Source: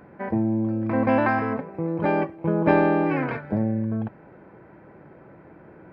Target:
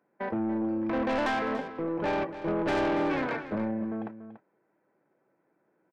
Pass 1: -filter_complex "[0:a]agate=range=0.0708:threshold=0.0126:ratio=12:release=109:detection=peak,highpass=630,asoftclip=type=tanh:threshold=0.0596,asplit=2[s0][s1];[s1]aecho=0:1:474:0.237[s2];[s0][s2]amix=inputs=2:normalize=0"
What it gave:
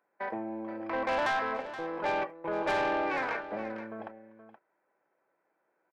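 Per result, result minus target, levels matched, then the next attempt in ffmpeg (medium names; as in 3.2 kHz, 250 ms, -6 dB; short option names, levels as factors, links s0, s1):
echo 187 ms late; 250 Hz band -7.0 dB
-filter_complex "[0:a]agate=range=0.0708:threshold=0.0126:ratio=12:release=109:detection=peak,highpass=630,asoftclip=type=tanh:threshold=0.0596,asplit=2[s0][s1];[s1]aecho=0:1:287:0.237[s2];[s0][s2]amix=inputs=2:normalize=0"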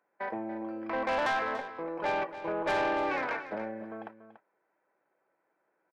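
250 Hz band -7.0 dB
-filter_complex "[0:a]agate=range=0.0708:threshold=0.0126:ratio=12:release=109:detection=peak,highpass=250,asoftclip=type=tanh:threshold=0.0596,asplit=2[s0][s1];[s1]aecho=0:1:287:0.237[s2];[s0][s2]amix=inputs=2:normalize=0"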